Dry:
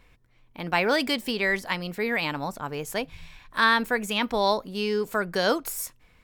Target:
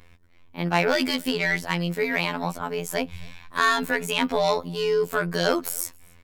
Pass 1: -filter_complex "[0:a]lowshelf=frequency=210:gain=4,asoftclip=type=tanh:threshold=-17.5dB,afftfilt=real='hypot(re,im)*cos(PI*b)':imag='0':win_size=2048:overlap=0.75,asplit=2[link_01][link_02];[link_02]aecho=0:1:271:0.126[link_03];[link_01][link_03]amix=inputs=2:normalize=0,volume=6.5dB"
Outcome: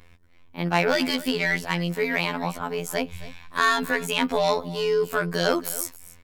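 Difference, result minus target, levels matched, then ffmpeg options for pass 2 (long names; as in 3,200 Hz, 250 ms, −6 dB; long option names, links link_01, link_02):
echo-to-direct +10.5 dB
-filter_complex "[0:a]lowshelf=frequency=210:gain=4,asoftclip=type=tanh:threshold=-17.5dB,afftfilt=real='hypot(re,im)*cos(PI*b)':imag='0':win_size=2048:overlap=0.75,asplit=2[link_01][link_02];[link_02]aecho=0:1:271:0.0376[link_03];[link_01][link_03]amix=inputs=2:normalize=0,volume=6.5dB"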